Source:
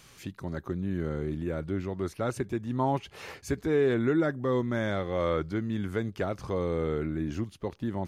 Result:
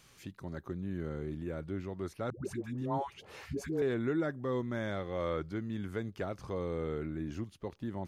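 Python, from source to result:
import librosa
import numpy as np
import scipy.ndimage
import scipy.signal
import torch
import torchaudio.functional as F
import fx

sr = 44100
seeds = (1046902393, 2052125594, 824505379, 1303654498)

y = fx.dispersion(x, sr, late='highs', ms=149.0, hz=570.0, at=(2.3, 3.82))
y = F.gain(torch.from_numpy(y), -6.5).numpy()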